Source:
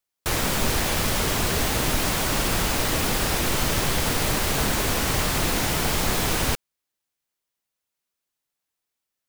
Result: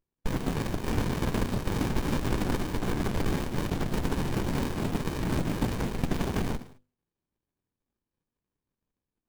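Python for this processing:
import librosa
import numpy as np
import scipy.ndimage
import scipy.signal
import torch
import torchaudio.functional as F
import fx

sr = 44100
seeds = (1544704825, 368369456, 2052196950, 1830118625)

y = fx.spec_dropout(x, sr, seeds[0], share_pct=67)
y = fx.peak_eq(y, sr, hz=1500.0, db=9.0, octaves=0.35, at=(0.87, 3.37))
y = fx.over_compress(y, sr, threshold_db=-27.0, ratio=-0.5)
y = scipy.signal.sosfilt(scipy.signal.butter(2, 160.0, 'highpass', fs=sr, output='sos'), y)
y = fx.low_shelf(y, sr, hz=220.0, db=5.5)
y = fx.hum_notches(y, sr, base_hz=50, count=5)
y = fx.rev_gated(y, sr, seeds[1], gate_ms=240, shape='falling', drr_db=9.0)
y = fx.running_max(y, sr, window=65)
y = y * librosa.db_to_amplitude(4.5)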